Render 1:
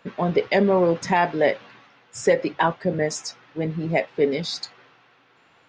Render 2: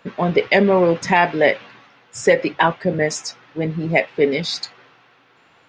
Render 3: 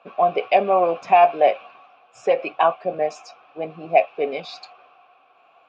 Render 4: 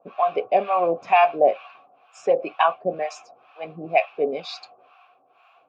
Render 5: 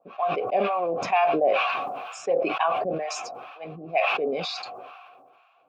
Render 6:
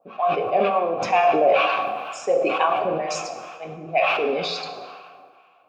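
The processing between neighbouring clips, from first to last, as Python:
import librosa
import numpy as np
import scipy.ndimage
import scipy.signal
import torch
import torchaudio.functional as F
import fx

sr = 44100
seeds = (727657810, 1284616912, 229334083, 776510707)

y1 = fx.dynamic_eq(x, sr, hz=2400.0, q=1.4, threshold_db=-39.0, ratio=4.0, max_db=6)
y1 = F.gain(torch.from_numpy(y1), 3.5).numpy()
y2 = fx.vowel_filter(y1, sr, vowel='a')
y2 = F.gain(torch.from_numpy(y2), 9.0).numpy()
y3 = fx.harmonic_tremolo(y2, sr, hz=2.1, depth_pct=100, crossover_hz=730.0)
y3 = F.gain(torch.from_numpy(y3), 3.0).numpy()
y4 = fx.sustainer(y3, sr, db_per_s=30.0)
y4 = F.gain(torch.from_numpy(y4), -6.0).numpy()
y5 = fx.rev_plate(y4, sr, seeds[0], rt60_s=1.4, hf_ratio=0.75, predelay_ms=0, drr_db=5.5)
y5 = F.gain(torch.from_numpy(y5), 2.5).numpy()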